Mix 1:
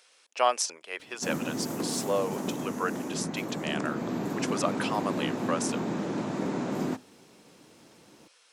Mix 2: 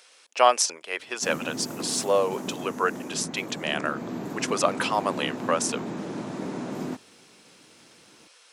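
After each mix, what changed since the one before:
speech +6.0 dB; reverb: off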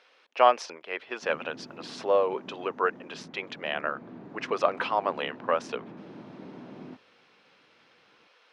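background -11.0 dB; master: add distance through air 300 m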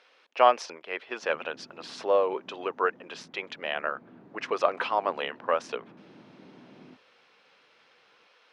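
background -7.5 dB

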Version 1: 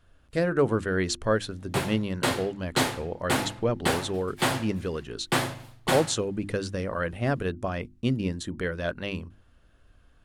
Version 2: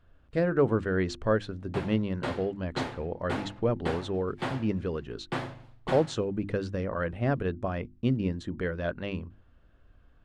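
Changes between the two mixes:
background -5.5 dB; master: add tape spacing loss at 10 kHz 21 dB

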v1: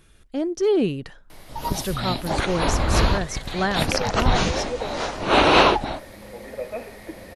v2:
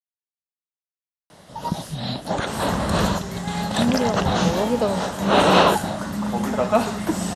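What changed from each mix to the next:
speech: muted; second sound: remove cascade formant filter e; master: add cabinet simulation 100–9800 Hz, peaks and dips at 180 Hz +8 dB, 340 Hz -4 dB, 580 Hz +3 dB, 2.3 kHz -9 dB, 4.6 kHz -3 dB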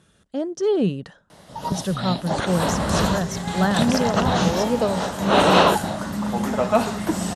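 speech: unmuted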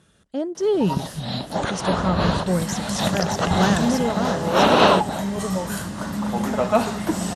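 first sound: entry -0.75 s

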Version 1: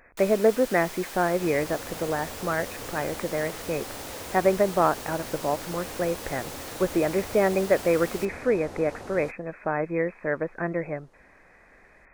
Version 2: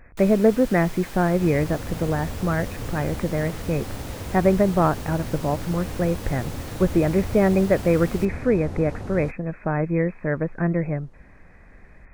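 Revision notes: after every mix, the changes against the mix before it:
master: add tone controls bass +15 dB, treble -3 dB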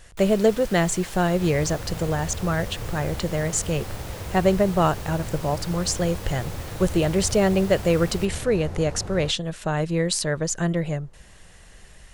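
speech: remove brick-wall FIR low-pass 2.6 kHz; master: add peaking EQ 260 Hz -9.5 dB 0.44 oct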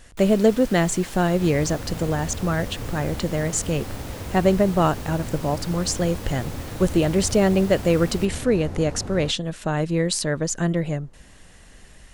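master: add peaking EQ 260 Hz +9.5 dB 0.44 oct

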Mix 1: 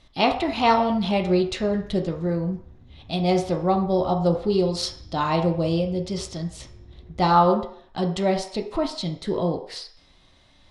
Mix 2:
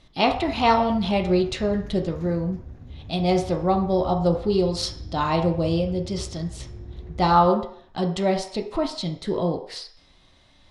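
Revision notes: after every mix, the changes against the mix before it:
background +8.0 dB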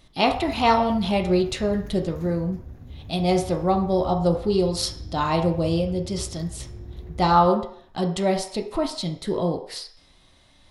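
master: remove low-pass 6.6 kHz 12 dB/octave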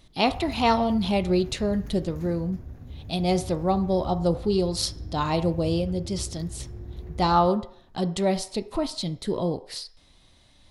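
speech: send -9.0 dB

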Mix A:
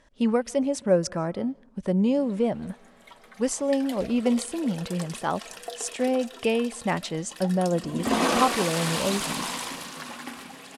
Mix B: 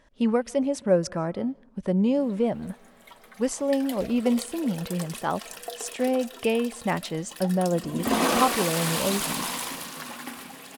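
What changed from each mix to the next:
speech: add treble shelf 8.3 kHz -10.5 dB; master: remove low-pass 9.2 kHz 12 dB/octave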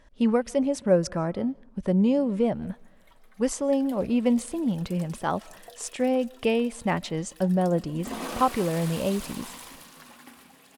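background -11.5 dB; master: add bass shelf 84 Hz +8 dB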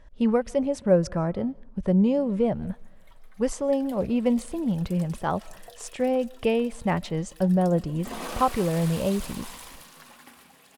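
speech: add tilt EQ -1.5 dB/octave; master: add peaking EQ 270 Hz -5 dB 0.69 oct

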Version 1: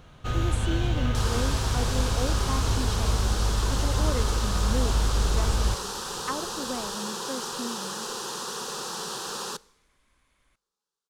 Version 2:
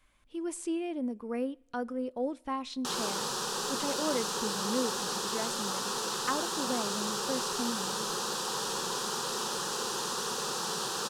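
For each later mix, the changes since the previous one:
first sound: muted; second sound: entry +1.70 s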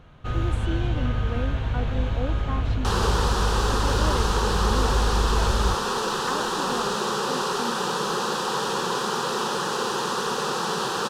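first sound: unmuted; second sound +10.0 dB; master: add tone controls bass +1 dB, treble -11 dB

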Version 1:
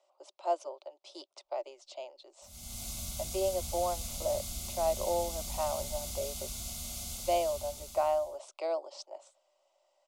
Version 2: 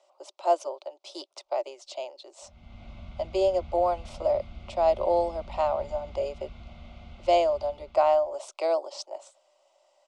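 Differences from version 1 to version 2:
speech +7.5 dB; background: add low-pass 2.5 kHz 24 dB/octave

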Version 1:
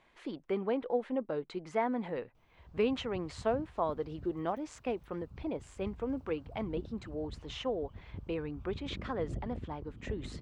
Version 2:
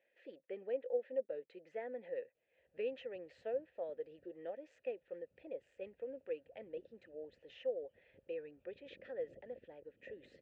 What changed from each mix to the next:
master: add vowel filter e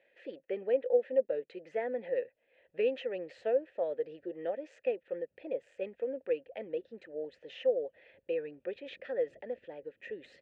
speech +9.5 dB; background -4.5 dB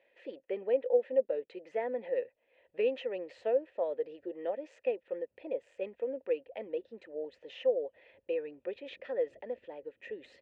master: add graphic EQ with 31 bands 160 Hz -10 dB, 1 kHz +9 dB, 1.6 kHz -5 dB

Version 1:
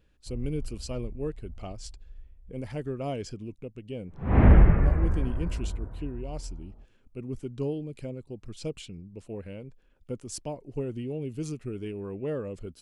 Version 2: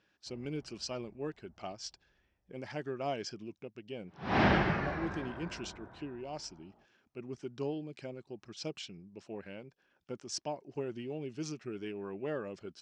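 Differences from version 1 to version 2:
background: remove low-pass 2.2 kHz 24 dB/octave; master: add cabinet simulation 240–6300 Hz, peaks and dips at 260 Hz -6 dB, 480 Hz -8 dB, 800 Hz +3 dB, 1.6 kHz +5 dB, 5.5 kHz +7 dB

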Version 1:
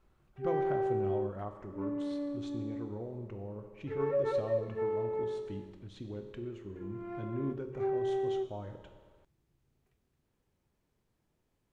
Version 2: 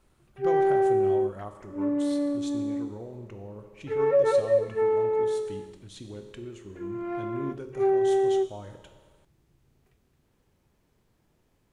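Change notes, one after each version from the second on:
speech: remove tape spacing loss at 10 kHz 24 dB; background +9.5 dB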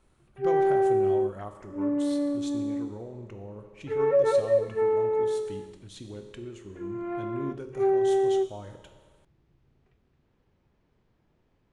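background: add distance through air 160 m

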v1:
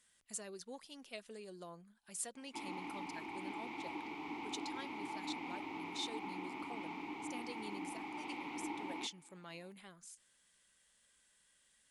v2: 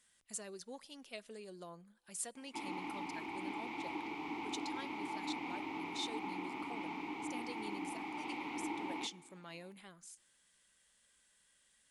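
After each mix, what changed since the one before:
reverb: on, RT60 1.3 s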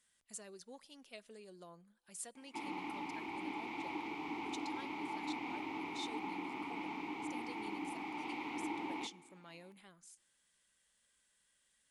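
speech -4.5 dB

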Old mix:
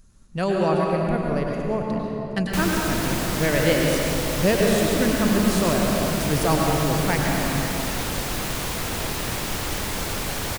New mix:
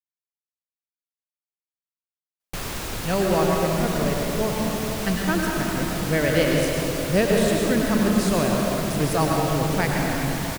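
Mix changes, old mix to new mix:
speech: entry +2.70 s; background -3.5 dB

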